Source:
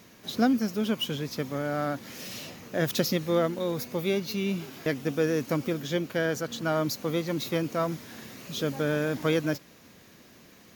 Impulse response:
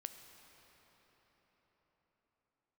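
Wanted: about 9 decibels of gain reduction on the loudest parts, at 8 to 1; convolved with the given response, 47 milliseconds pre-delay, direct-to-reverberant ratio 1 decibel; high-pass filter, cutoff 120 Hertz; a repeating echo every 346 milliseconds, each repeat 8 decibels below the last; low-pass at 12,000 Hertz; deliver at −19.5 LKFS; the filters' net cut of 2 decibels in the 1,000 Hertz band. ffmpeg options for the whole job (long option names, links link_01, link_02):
-filter_complex "[0:a]highpass=120,lowpass=12000,equalizer=frequency=1000:width_type=o:gain=-3,acompressor=threshold=-29dB:ratio=8,aecho=1:1:346|692|1038|1384|1730:0.398|0.159|0.0637|0.0255|0.0102,asplit=2[link_01][link_02];[1:a]atrim=start_sample=2205,adelay=47[link_03];[link_02][link_03]afir=irnorm=-1:irlink=0,volume=3dB[link_04];[link_01][link_04]amix=inputs=2:normalize=0,volume=12.5dB"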